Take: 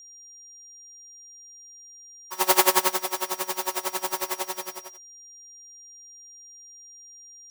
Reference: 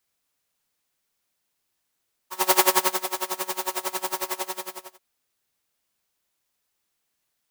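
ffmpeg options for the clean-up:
ffmpeg -i in.wav -af "bandreject=frequency=5700:width=30" out.wav

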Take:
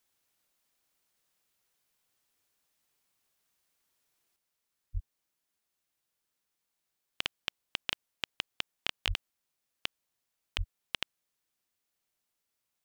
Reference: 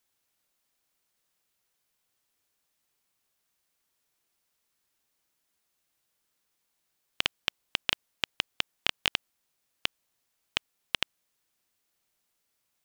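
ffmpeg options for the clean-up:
ffmpeg -i in.wav -filter_complex "[0:a]asplit=3[link_01][link_02][link_03];[link_01]afade=type=out:start_time=4.93:duration=0.02[link_04];[link_02]highpass=frequency=140:width=0.5412,highpass=frequency=140:width=1.3066,afade=type=in:start_time=4.93:duration=0.02,afade=type=out:start_time=5.05:duration=0.02[link_05];[link_03]afade=type=in:start_time=5.05:duration=0.02[link_06];[link_04][link_05][link_06]amix=inputs=3:normalize=0,asplit=3[link_07][link_08][link_09];[link_07]afade=type=out:start_time=9.07:duration=0.02[link_10];[link_08]highpass=frequency=140:width=0.5412,highpass=frequency=140:width=1.3066,afade=type=in:start_time=9.07:duration=0.02,afade=type=out:start_time=9.19:duration=0.02[link_11];[link_09]afade=type=in:start_time=9.19:duration=0.02[link_12];[link_10][link_11][link_12]amix=inputs=3:normalize=0,asplit=3[link_13][link_14][link_15];[link_13]afade=type=out:start_time=10.57:duration=0.02[link_16];[link_14]highpass=frequency=140:width=0.5412,highpass=frequency=140:width=1.3066,afade=type=in:start_time=10.57:duration=0.02,afade=type=out:start_time=10.69:duration=0.02[link_17];[link_15]afade=type=in:start_time=10.69:duration=0.02[link_18];[link_16][link_17][link_18]amix=inputs=3:normalize=0,asetnsamples=nb_out_samples=441:pad=0,asendcmd='4.36 volume volume 6dB',volume=0dB" out.wav

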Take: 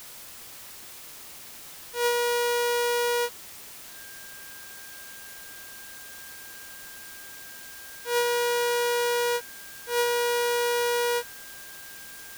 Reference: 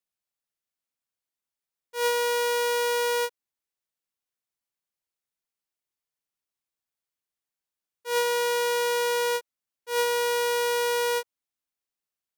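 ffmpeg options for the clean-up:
ffmpeg -i in.wav -af "bandreject=frequency=1600:width=30,afwtdn=0.0063" out.wav

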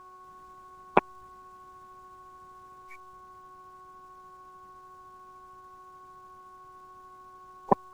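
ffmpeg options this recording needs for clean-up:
ffmpeg -i in.wav -af "adeclick=threshold=4,bandreject=frequency=371.2:width_type=h:width=4,bandreject=frequency=742.4:width_type=h:width=4,bandreject=frequency=1113.6:width_type=h:width=4,bandreject=frequency=1484.8:width_type=h:width=4,bandreject=frequency=1100:width=30" out.wav

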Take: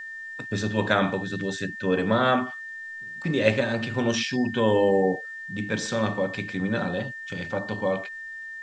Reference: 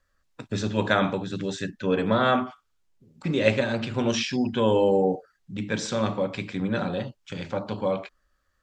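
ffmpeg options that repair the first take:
ffmpeg -i in.wav -af "bandreject=frequency=1800:width=30,agate=range=-21dB:threshold=-30dB" out.wav

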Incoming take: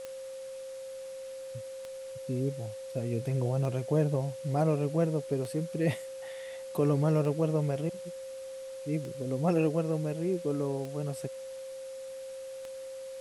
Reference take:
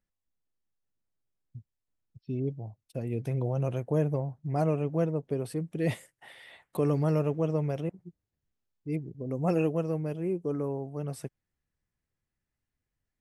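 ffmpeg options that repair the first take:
ffmpeg -i in.wav -af "adeclick=threshold=4,bandreject=frequency=530:width=30,afwtdn=0.0022" out.wav

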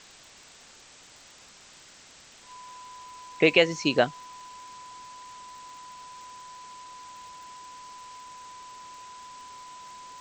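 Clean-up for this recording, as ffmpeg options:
ffmpeg -i in.wav -af "adeclick=threshold=4,bandreject=frequency=1000:width=30,afwtdn=0.004" out.wav

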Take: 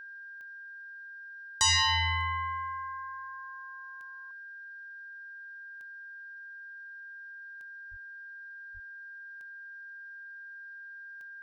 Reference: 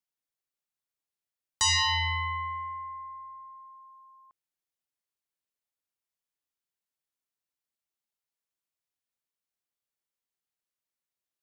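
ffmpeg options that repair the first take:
ffmpeg -i in.wav -filter_complex "[0:a]adeclick=threshold=4,bandreject=frequency=1600:width=30,asplit=3[link_01][link_02][link_03];[link_01]afade=type=out:start_time=7.9:duration=0.02[link_04];[link_02]highpass=frequency=140:width=0.5412,highpass=frequency=140:width=1.3066,afade=type=in:start_time=7.9:duration=0.02,afade=type=out:start_time=8.02:duration=0.02[link_05];[link_03]afade=type=in:start_time=8.02:duration=0.02[link_06];[link_04][link_05][link_06]amix=inputs=3:normalize=0,asplit=3[link_07][link_08][link_09];[link_07]afade=type=out:start_time=8.73:duration=0.02[link_10];[link_08]highpass=frequency=140:width=0.5412,highpass=frequency=140:width=1.3066,afade=type=in:start_time=8.73:duration=0.02,afade=type=out:start_time=8.85:duration=0.02[link_11];[link_09]afade=type=in:start_time=8.85:duration=0.02[link_12];[link_10][link_11][link_12]amix=inputs=3:normalize=0,agate=range=-21dB:threshold=-38dB" out.wav

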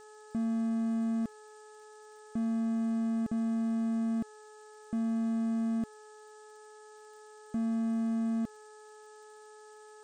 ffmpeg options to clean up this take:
ffmpeg -i in.wav -af "adeclick=threshold=4,bandreject=frequency=426.8:width_type=h:width=4,bandreject=frequency=853.6:width_type=h:width=4,bandreject=frequency=1280.4:width_type=h:width=4,bandreject=frequency=1707.2:width_type=h:width=4,afftdn=noise_reduction=27:noise_floor=-53" out.wav

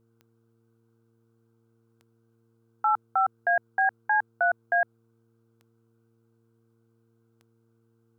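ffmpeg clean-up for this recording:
ffmpeg -i in.wav -af "adeclick=threshold=4,bandreject=frequency=114.3:width_type=h:width=4,bandreject=frequency=228.6:width_type=h:width=4,bandreject=frequency=342.9:width_type=h:width=4,bandreject=frequency=457.2:width_type=h:width=4,agate=range=-21dB:threshold=-59dB" out.wav

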